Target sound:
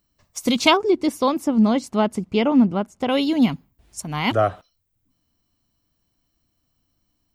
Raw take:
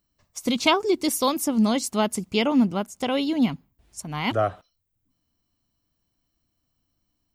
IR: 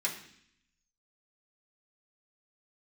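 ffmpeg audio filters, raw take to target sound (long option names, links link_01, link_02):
-filter_complex "[0:a]asettb=1/sr,asplit=3[link_01][link_02][link_03];[link_01]atrim=end=0.774[link_04];[link_02]atrim=start=0.77:end=3.09,asetpts=PTS-STARTPTS,afade=type=in:duration=0.004:curve=qsin,afade=type=out:start_time=2.316:duration=0.004:curve=qsin,lowpass=frequency=1500:poles=1[link_05];[link_03]atrim=start=3.086[link_06];[link_04][link_05]acrossfade=duration=0.004:curve1=hsin:curve2=qsin[link_07];[link_07][link_06]acrossfade=duration=0.004:curve1=qsin:curve2=hsin,volume=4dB"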